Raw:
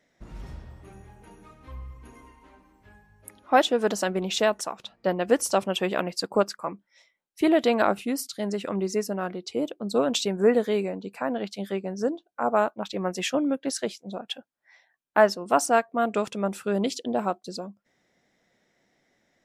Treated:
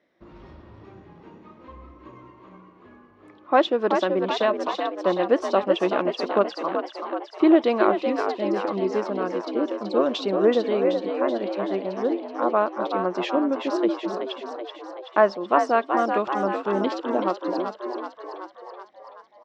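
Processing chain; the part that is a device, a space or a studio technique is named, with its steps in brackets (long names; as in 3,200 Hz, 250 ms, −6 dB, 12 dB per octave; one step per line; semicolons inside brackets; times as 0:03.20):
frequency-shifting delay pedal into a guitar cabinet (echo with shifted repeats 379 ms, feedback 61%, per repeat +60 Hz, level −6 dB; loudspeaker in its box 80–4,500 Hz, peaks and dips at 130 Hz −8 dB, 340 Hz +10 dB, 560 Hz +5 dB, 1,100 Hz +8 dB)
level −2.5 dB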